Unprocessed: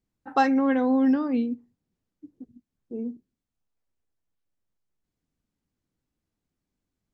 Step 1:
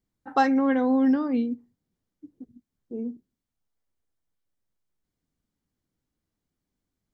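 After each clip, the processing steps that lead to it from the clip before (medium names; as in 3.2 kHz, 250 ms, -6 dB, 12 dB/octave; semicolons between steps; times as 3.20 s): band-stop 2.6 kHz, Q 15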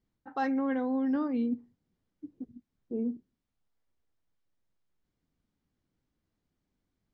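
reverse; compression 8:1, threshold -29 dBFS, peak gain reduction 13.5 dB; reverse; distance through air 98 m; trim +2 dB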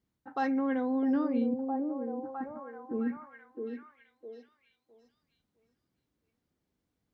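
high-pass 51 Hz; repeats whose band climbs or falls 659 ms, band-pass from 400 Hz, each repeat 0.7 oct, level -1 dB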